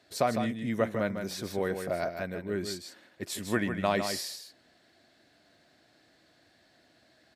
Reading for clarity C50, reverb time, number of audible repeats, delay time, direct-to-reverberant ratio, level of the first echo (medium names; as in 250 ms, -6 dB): no reverb, no reverb, 1, 154 ms, no reverb, -7.5 dB